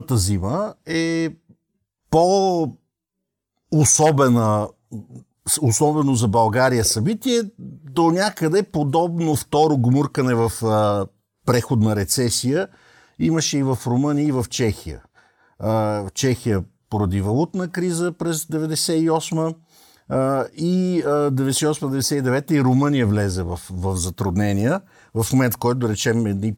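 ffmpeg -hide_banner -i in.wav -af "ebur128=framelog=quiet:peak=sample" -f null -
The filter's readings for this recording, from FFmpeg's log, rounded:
Integrated loudness:
  I:         -19.9 LUFS
  Threshold: -30.4 LUFS
Loudness range:
  LRA:         3.7 LU
  Threshold: -40.4 LUFS
  LRA low:   -22.5 LUFS
  LRA high:  -18.8 LUFS
Sample peak:
  Peak:       -4.9 dBFS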